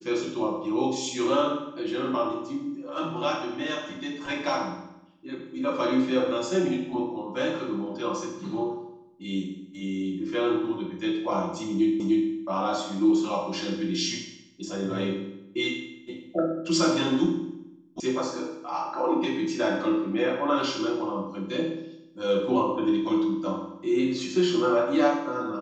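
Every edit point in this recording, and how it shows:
12.00 s: repeat of the last 0.3 s
18.00 s: sound stops dead

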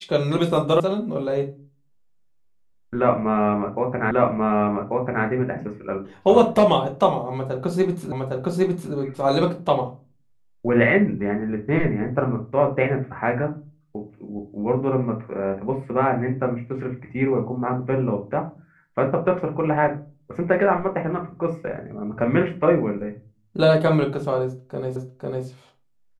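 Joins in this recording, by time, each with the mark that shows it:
0.80 s: sound stops dead
4.11 s: repeat of the last 1.14 s
8.12 s: repeat of the last 0.81 s
24.96 s: repeat of the last 0.5 s

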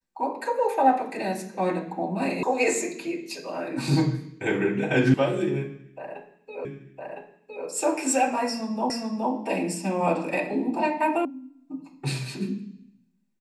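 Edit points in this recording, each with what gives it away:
2.43 s: sound stops dead
5.14 s: sound stops dead
6.65 s: repeat of the last 1.01 s
8.90 s: repeat of the last 0.42 s
11.25 s: sound stops dead

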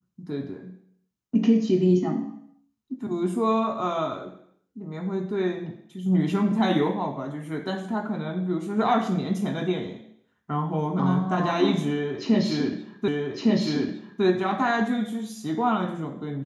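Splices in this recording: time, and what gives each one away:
13.08 s: repeat of the last 1.16 s

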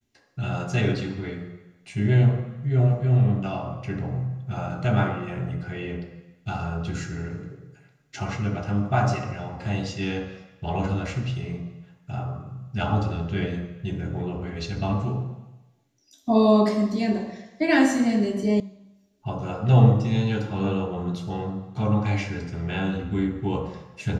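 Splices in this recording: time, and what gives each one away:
18.60 s: sound stops dead

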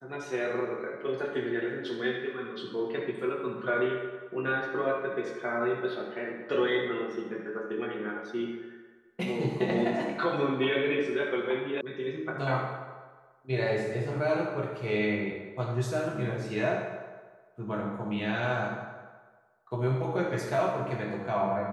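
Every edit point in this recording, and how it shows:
11.81 s: sound stops dead

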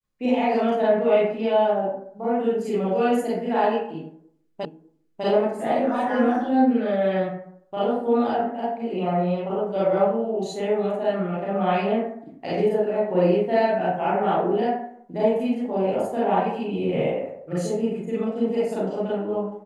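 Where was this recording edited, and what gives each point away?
4.65 s: repeat of the last 0.6 s

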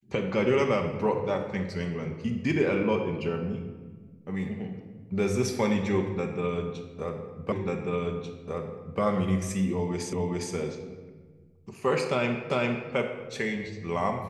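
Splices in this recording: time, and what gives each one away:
7.52 s: repeat of the last 1.49 s
10.13 s: repeat of the last 0.41 s
12.50 s: repeat of the last 0.4 s

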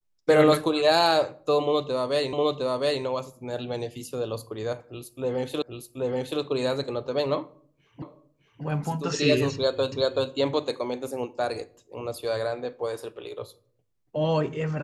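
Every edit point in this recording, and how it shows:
2.33 s: repeat of the last 0.71 s
5.62 s: repeat of the last 0.78 s
8.02 s: repeat of the last 0.61 s
9.92 s: repeat of the last 0.38 s

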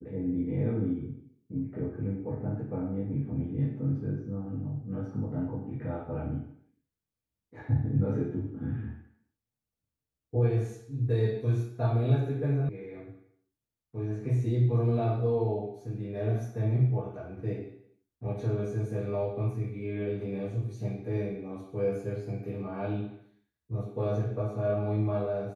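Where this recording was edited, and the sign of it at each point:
12.69 s: sound stops dead

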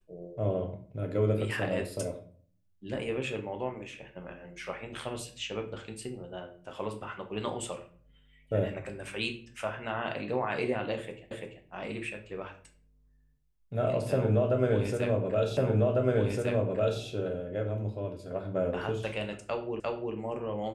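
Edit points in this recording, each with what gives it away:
11.31 s: repeat of the last 0.34 s
15.57 s: repeat of the last 1.45 s
19.80 s: repeat of the last 0.35 s

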